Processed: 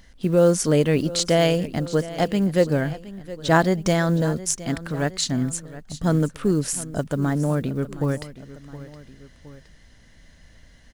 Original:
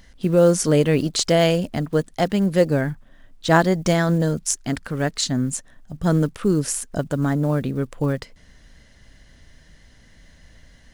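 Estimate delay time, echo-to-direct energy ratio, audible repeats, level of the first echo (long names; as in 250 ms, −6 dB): 717 ms, −15.0 dB, 2, −16.5 dB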